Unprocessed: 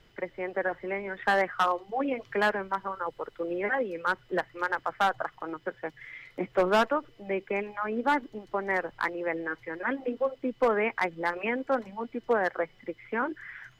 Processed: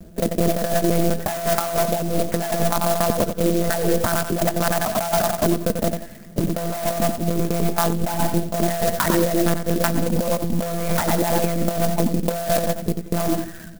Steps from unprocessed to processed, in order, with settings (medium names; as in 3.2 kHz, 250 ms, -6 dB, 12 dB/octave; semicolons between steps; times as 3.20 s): local Wiener filter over 41 samples; monotone LPC vocoder at 8 kHz 170 Hz; small resonant body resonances 210/650 Hz, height 14 dB, ringing for 55 ms; in parallel at -12 dB: sine folder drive 14 dB, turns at -5 dBFS; on the sum: feedback delay 90 ms, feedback 32%, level -11 dB; on a send at -21.5 dB: reverberation RT60 1.4 s, pre-delay 7 ms; on the sum: compressor with a negative ratio -24 dBFS, ratio -1; sampling jitter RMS 0.086 ms; trim +4 dB